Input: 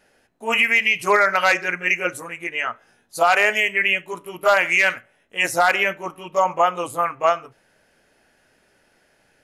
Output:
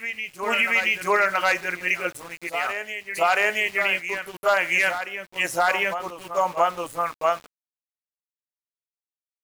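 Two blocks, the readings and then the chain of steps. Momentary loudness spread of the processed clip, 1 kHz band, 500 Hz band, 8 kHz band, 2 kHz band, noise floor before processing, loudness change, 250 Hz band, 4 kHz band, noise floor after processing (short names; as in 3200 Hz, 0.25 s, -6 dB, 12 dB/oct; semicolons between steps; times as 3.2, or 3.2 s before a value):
10 LU, -3.5 dB, -3.5 dB, -3.0 dB, -3.5 dB, -62 dBFS, -4.0 dB, -4.0 dB, -3.5 dB, under -85 dBFS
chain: sample gate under -34 dBFS; reverse echo 0.677 s -9 dB; gain -4 dB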